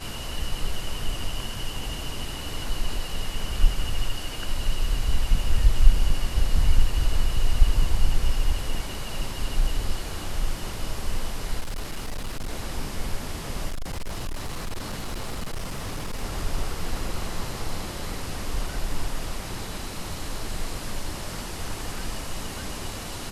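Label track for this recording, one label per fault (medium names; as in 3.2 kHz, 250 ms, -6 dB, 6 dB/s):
11.600000	12.530000	clipped -26 dBFS
13.680000	16.240000	clipped -26 dBFS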